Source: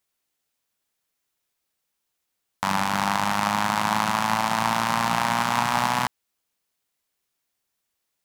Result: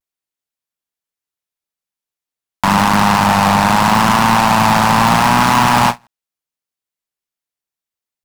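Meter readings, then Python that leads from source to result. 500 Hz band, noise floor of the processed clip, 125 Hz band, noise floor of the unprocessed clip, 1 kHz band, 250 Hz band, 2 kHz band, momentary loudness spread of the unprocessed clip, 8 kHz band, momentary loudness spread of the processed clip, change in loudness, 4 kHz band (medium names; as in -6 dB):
+12.0 dB, under -85 dBFS, +15.0 dB, -79 dBFS, +11.0 dB, +14.5 dB, +10.0 dB, 3 LU, +9.5 dB, 3 LU, +11.5 dB, +10.0 dB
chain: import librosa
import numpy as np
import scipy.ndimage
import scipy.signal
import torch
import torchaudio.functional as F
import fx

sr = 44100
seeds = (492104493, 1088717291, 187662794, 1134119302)

y = fx.vibrato(x, sr, rate_hz=0.78, depth_cents=56.0)
y = fx.leveller(y, sr, passes=5)
y = fx.end_taper(y, sr, db_per_s=410.0)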